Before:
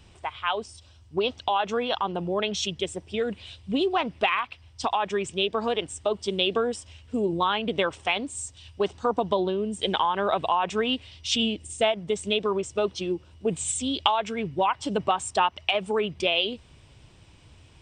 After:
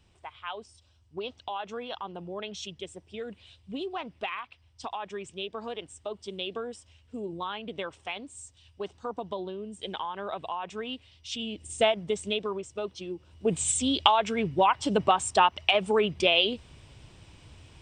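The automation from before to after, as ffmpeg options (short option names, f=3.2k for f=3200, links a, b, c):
-af "volume=10dB,afade=t=in:st=11.46:d=0.34:silence=0.298538,afade=t=out:st=11.8:d=0.82:silence=0.375837,afade=t=in:st=13.15:d=0.44:silence=0.316228"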